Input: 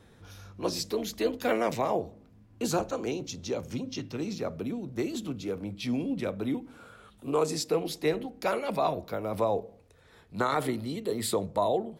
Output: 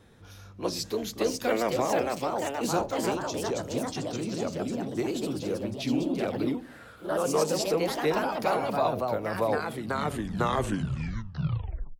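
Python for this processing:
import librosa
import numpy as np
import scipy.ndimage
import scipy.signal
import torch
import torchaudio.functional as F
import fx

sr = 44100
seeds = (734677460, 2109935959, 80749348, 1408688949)

y = fx.tape_stop_end(x, sr, length_s=1.62)
y = fx.echo_pitch(y, sr, ms=634, semitones=2, count=3, db_per_echo=-3.0)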